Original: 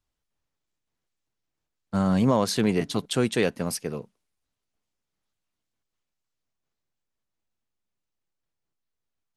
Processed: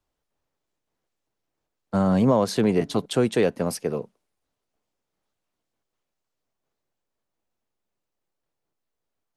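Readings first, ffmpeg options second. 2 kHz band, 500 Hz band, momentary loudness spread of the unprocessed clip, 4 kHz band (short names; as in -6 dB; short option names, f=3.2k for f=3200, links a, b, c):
-1.5 dB, +4.0 dB, 10 LU, -2.5 dB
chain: -filter_complex "[0:a]acrossover=split=200[a][b];[b]acompressor=threshold=-32dB:ratio=1.5[c];[a][c]amix=inputs=2:normalize=0,equalizer=f=550:w=0.55:g=8.5"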